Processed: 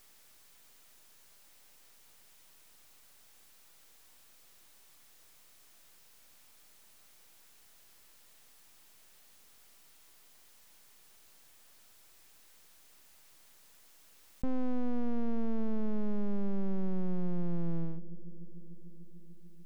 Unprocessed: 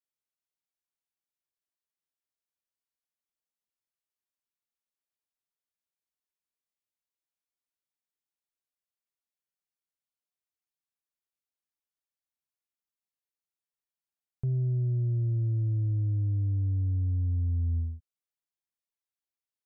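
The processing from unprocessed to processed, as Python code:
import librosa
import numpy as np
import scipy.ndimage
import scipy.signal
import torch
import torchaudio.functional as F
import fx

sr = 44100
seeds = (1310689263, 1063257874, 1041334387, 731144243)

y = np.abs(x)
y = fx.echo_bbd(y, sr, ms=295, stages=1024, feedback_pct=61, wet_db=-22.5)
y = fx.env_flatten(y, sr, amount_pct=50)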